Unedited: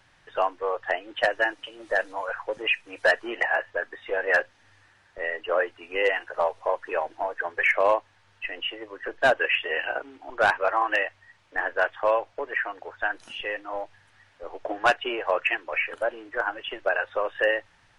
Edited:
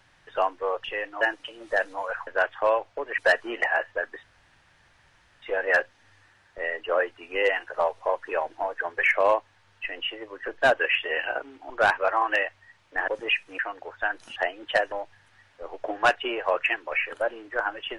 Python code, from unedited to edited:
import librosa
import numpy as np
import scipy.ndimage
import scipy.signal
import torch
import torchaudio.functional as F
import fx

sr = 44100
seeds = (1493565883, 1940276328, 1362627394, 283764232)

y = fx.edit(x, sr, fx.swap(start_s=0.84, length_s=0.56, other_s=13.36, other_length_s=0.37),
    fx.swap(start_s=2.46, length_s=0.51, other_s=11.68, other_length_s=0.91),
    fx.insert_room_tone(at_s=4.02, length_s=1.19), tone=tone)